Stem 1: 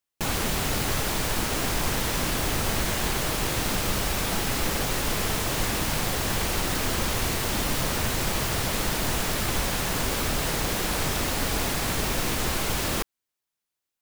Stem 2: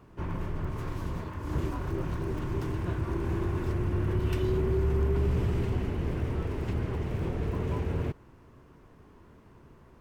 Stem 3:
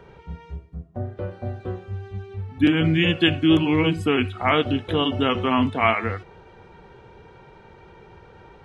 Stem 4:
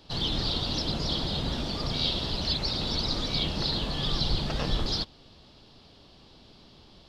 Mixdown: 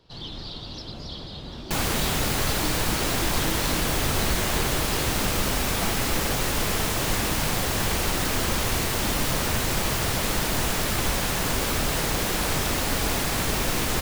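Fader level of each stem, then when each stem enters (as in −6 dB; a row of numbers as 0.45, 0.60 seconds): +1.5, −13.5, −19.5, −8.0 decibels; 1.50, 0.00, 0.00, 0.00 seconds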